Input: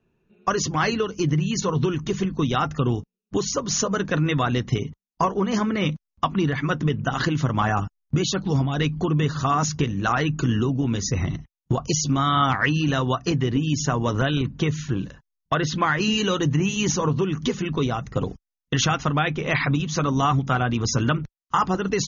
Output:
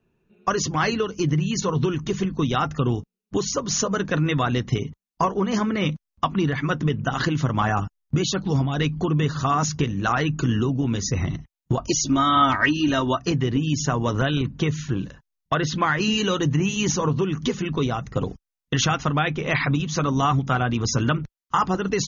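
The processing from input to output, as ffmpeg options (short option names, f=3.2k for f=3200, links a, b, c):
-filter_complex "[0:a]asettb=1/sr,asplit=3[a][b][c];[a]atrim=end=11.784[d];[b]atrim=start=11.78:end=13.19,asetpts=PTS-STARTPTS,afade=t=in:d=0.004:c=qsin,afade=t=out:st=1.406:d=0.004:c=qsin,aecho=1:1:3.2:0.65,atrim=end_sample=62181[e];[c]atrim=start=13.186[f];[d][e]acrossfade=d=0.004:c1=hsin:c2=qsin[g];[g][f]acrossfade=d=0.004:c1=qsin:c2=hsin"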